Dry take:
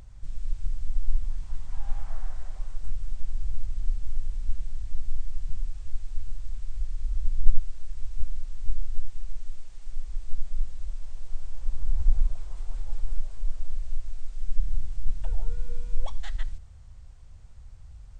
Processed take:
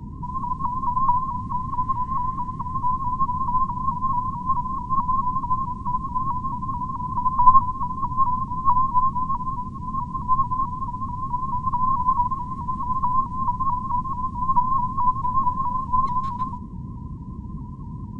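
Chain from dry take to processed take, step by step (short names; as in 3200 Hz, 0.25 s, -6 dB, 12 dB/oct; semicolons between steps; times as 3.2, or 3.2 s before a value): band inversion scrambler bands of 1000 Hz; band noise 34–230 Hz -30 dBFS; low shelf 210 Hz +3 dB; shaped vibrato saw up 4.6 Hz, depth 100 cents; gain -6 dB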